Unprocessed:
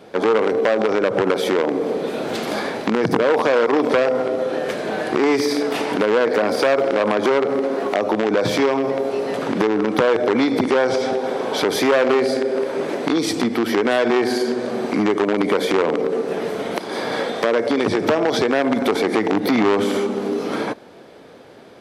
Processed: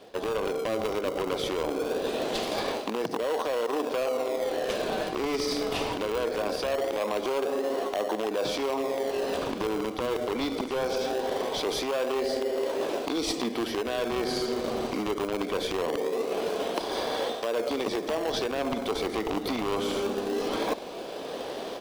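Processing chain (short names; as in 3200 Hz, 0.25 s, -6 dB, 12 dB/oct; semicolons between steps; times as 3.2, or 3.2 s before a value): band shelf 1700 Hz -8 dB 1 oct; AGC gain up to 14 dB; weighting filter A; in parallel at -8 dB: decimation with a swept rate 35×, swing 100% 0.22 Hz; on the sum: notch 880 Hz, Q 16; reverse; compressor 6:1, threshold -23 dBFS, peak gain reduction 13.5 dB; reverse; gain -3 dB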